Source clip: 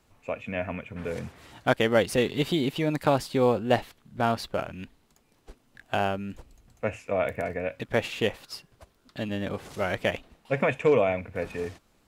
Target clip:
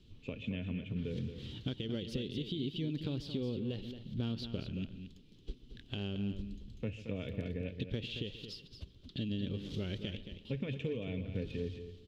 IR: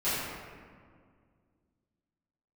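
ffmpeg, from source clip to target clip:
-filter_complex "[0:a]firequalizer=gain_entry='entry(400,0);entry(690,-21);entry(2100,-11);entry(3200,10);entry(8600,-8)':delay=0.05:min_phase=1,alimiter=limit=-19.5dB:level=0:latency=1:release=169,asplit=2[link_01][link_02];[link_02]adelay=134,lowpass=frequency=2000:poles=1,volume=-19dB,asplit=2[link_03][link_04];[link_04]adelay=134,lowpass=frequency=2000:poles=1,volume=0.36,asplit=2[link_05][link_06];[link_06]adelay=134,lowpass=frequency=2000:poles=1,volume=0.36[link_07];[link_03][link_05][link_07]amix=inputs=3:normalize=0[link_08];[link_01][link_08]amix=inputs=2:normalize=0,acompressor=threshold=-42dB:ratio=3,bass=frequency=250:gain=6,treble=frequency=4000:gain=-10,asplit=2[link_09][link_10];[link_10]aecho=0:1:224:0.335[link_11];[link_09][link_11]amix=inputs=2:normalize=0,volume=1.5dB"

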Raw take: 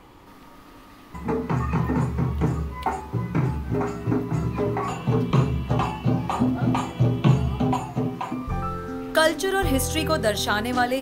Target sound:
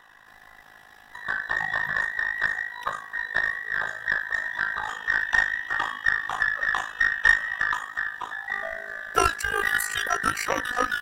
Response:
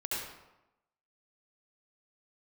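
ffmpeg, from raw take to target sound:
-af "afftfilt=real='real(if(between(b,1,1012),(2*floor((b-1)/92)+1)*92-b,b),0)':imag='imag(if(between(b,1,1012),(2*floor((b-1)/92)+1)*92-b,b),0)*if(between(b,1,1012),-1,1)':win_size=2048:overlap=0.75,tremolo=f=53:d=0.788,aeval=exprs='0.531*(cos(1*acos(clip(val(0)/0.531,-1,1)))-cos(1*PI/2))+0.0237*(cos(4*acos(clip(val(0)/0.531,-1,1)))-cos(4*PI/2))+0.00335*(cos(5*acos(clip(val(0)/0.531,-1,1)))-cos(5*PI/2))+0.0211*(cos(7*acos(clip(val(0)/0.531,-1,1)))-cos(7*PI/2))':channel_layout=same,volume=1.5dB"

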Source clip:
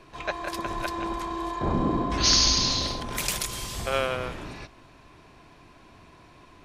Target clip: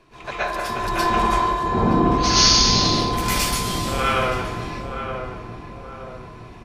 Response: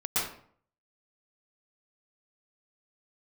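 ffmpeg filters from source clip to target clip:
-filter_complex "[0:a]asettb=1/sr,asplit=3[link_01][link_02][link_03];[link_01]atrim=end=0.864[link_04];[link_02]atrim=start=0.86:end=1.38,asetpts=PTS-STARTPTS,afade=type=in:duration=0.004:curve=qsin,afade=type=out:start_time=0.516:duration=0.004:curve=qsin,acontrast=55[link_05];[link_03]atrim=start=1.376[link_06];[link_04][link_05]acrossfade=duration=0.004:curve1=hsin:curve2=qsin[link_07];[link_07][link_06]acrossfade=duration=0.004:curve1=qsin:curve2=hsin,asplit=2[link_08][link_09];[link_09]adelay=920,lowpass=frequency=1200:poles=1,volume=-6dB,asplit=2[link_10][link_11];[link_11]adelay=920,lowpass=frequency=1200:poles=1,volume=0.49,asplit=2[link_12][link_13];[link_13]adelay=920,lowpass=frequency=1200:poles=1,volume=0.49,asplit=2[link_14][link_15];[link_15]adelay=920,lowpass=frequency=1200:poles=1,volume=0.49,asplit=2[link_16][link_17];[link_17]adelay=920,lowpass=frequency=1200:poles=1,volume=0.49,asplit=2[link_18][link_19];[link_19]adelay=920,lowpass=frequency=1200:poles=1,volume=0.49[link_20];[link_08][link_10][link_12][link_14][link_16][link_18][link_20]amix=inputs=7:normalize=0[link_21];[1:a]atrim=start_sample=2205[link_22];[link_21][link_22]afir=irnorm=-1:irlink=0,volume=-2dB"

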